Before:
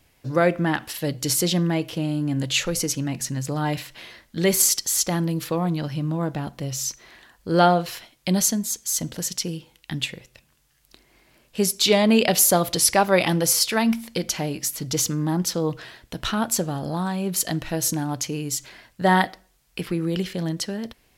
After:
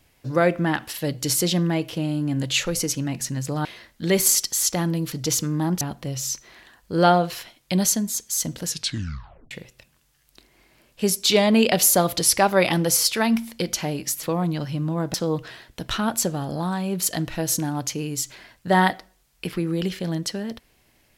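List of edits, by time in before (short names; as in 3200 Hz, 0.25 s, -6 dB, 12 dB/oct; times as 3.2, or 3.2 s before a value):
3.65–3.99 cut
5.46–6.37 swap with 14.79–15.48
9.22 tape stop 0.85 s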